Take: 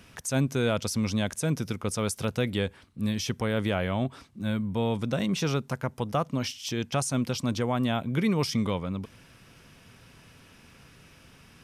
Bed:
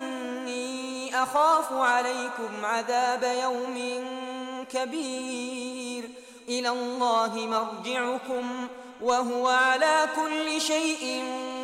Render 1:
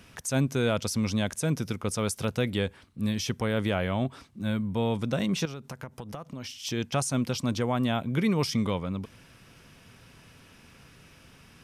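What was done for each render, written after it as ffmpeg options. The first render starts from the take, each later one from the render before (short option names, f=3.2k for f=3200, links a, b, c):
-filter_complex "[0:a]asettb=1/sr,asplit=3[a][b][c];[a]atrim=end=5.454[d];[b]atrim=start=5.45:end=6.53,asetpts=PTS-STARTPTS,afade=t=in:d=0.004:c=qsin,afade=t=out:st=1.076:d=0.004:c=qsin,acompressor=threshold=-34dB:ratio=16:attack=3.2:release=140:knee=1:detection=peak[e];[c]atrim=start=6.526[f];[d][e]acrossfade=d=0.004:c1=hsin:c2=qsin[g];[g][f]acrossfade=d=0.004:c1=qsin:c2=hsin"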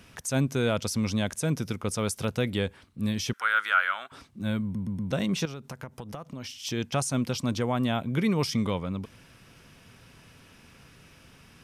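-filter_complex "[0:a]asettb=1/sr,asplit=3[a][b][c];[a]atrim=end=3.334[d];[b]atrim=start=3.33:end=4.12,asetpts=PTS-STARTPTS,afade=t=in:d=0.004:c=qsin,afade=t=out:st=0.786:d=0.004:c=qsin,highpass=f=1.4k:t=q:w=8.5[e];[c]atrim=start=4.116[f];[d][e]acrossfade=d=0.004:c1=hsin:c2=qsin[g];[g][f]acrossfade=d=0.004:c1=qsin:c2=hsin,asplit=5[h][i][j][k][l];[h]atrim=end=4.752[m];[i]atrim=start=4.628:end=4.752[n];[j]atrim=start=4.628:end=4.752[o];[k]atrim=start=4.628:end=4.752[p];[l]atrim=start=5.108[q];[m][n]acrossfade=d=0.004:c1=hsin:c2=hsin[r];[r][o]acrossfade=d=0.004:c1=hsin:c2=hsin[s];[s][p]acrossfade=d=0.004:c1=hsin:c2=hsin[t];[t][q]acrossfade=d=0.004:c1=hsin:c2=hsin"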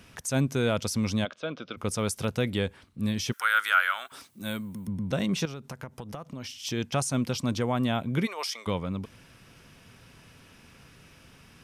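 -filter_complex "[0:a]asplit=3[a][b][c];[a]afade=t=out:st=1.24:d=0.02[d];[b]highpass=380,equalizer=f=400:t=q:w=4:g=-5,equalizer=f=570:t=q:w=4:g=4,equalizer=f=890:t=q:w=4:g=-8,equalizer=f=1.3k:t=q:w=4:g=6,equalizer=f=1.9k:t=q:w=4:g=-9,equalizer=f=3.4k:t=q:w=4:g=5,lowpass=f=3.6k:w=0.5412,lowpass=f=3.6k:w=1.3066,afade=t=in:st=1.24:d=0.02,afade=t=out:st=1.76:d=0.02[e];[c]afade=t=in:st=1.76:d=0.02[f];[d][e][f]amix=inputs=3:normalize=0,asettb=1/sr,asplit=3[g][h][i];[g]atrim=end=3.324[j];[h]atrim=start=3.32:end=4.88,asetpts=PTS-STARTPTS,afade=t=in:d=0.004:c=qsin,afade=t=out:st=1.556:d=0.004:c=qsin,aemphasis=mode=production:type=bsi[k];[i]atrim=start=4.876[l];[j][k]acrossfade=d=0.004:c1=hsin:c2=qsin[m];[m][l]acrossfade=d=0.004:c1=qsin:c2=hsin,asplit=3[n][o][p];[n]afade=t=out:st=8.25:d=0.02[q];[o]highpass=f=590:w=0.5412,highpass=f=590:w=1.3066,afade=t=in:st=8.25:d=0.02,afade=t=out:st=8.66:d=0.02[r];[p]afade=t=in:st=8.66:d=0.02[s];[q][r][s]amix=inputs=3:normalize=0"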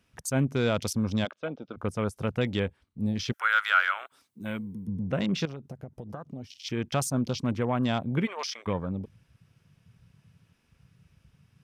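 -af "afwtdn=0.0112"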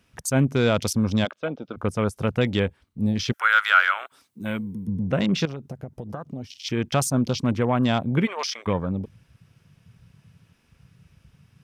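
-af "volume=5.5dB"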